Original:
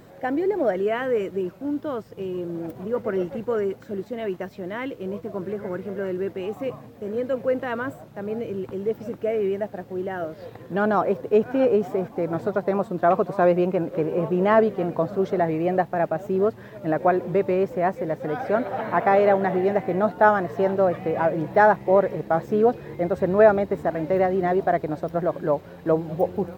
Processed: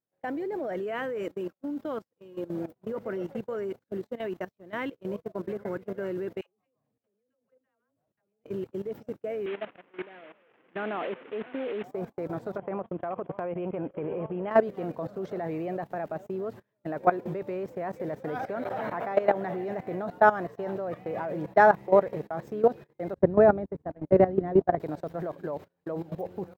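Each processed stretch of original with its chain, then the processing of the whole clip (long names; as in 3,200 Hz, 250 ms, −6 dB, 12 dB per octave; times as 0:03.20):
0:01.23–0:02.47: low-shelf EQ 190 Hz −3.5 dB + comb filter 3.7 ms, depth 34%
0:06.41–0:08.44: all-pass dispersion lows, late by 75 ms, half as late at 640 Hz + downward compressor 4 to 1, threshold −36 dBFS
0:09.46–0:11.84: linear delta modulator 16 kbit/s, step −24 dBFS + four-pole ladder high-pass 180 Hz, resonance 25% + parametric band 2,000 Hz +4 dB 1.9 octaves
0:12.57–0:14.51: Chebyshev low-pass with heavy ripple 3,300 Hz, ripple 3 dB + downward compressor 16 to 1, threshold −23 dBFS + low-shelf EQ 110 Hz +5.5 dB
0:23.14–0:24.80: noise gate −25 dBFS, range −33 dB + spectral tilt −3.5 dB per octave
whole clip: noise gate −31 dBFS, range −33 dB; low-shelf EQ 75 Hz −8.5 dB; output level in coarse steps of 16 dB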